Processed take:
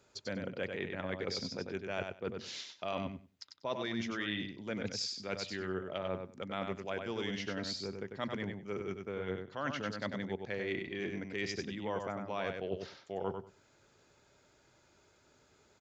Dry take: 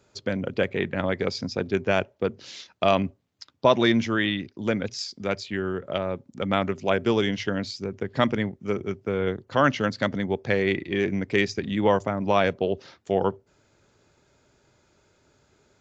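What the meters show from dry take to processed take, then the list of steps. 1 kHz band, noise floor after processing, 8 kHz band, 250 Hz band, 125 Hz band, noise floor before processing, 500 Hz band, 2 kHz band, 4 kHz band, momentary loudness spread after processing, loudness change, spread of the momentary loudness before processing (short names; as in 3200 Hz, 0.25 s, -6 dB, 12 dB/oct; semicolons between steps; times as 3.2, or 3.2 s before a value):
-14.5 dB, -68 dBFS, n/a, -13.5 dB, -14.0 dB, -66 dBFS, -14.0 dB, -12.0 dB, -9.0 dB, 5 LU, -13.0 dB, 8 LU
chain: reverse; compressor 6:1, threshold -30 dBFS, peak gain reduction 16 dB; reverse; low shelf 390 Hz -5 dB; feedback echo 96 ms, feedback 15%, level -5.5 dB; gain -3 dB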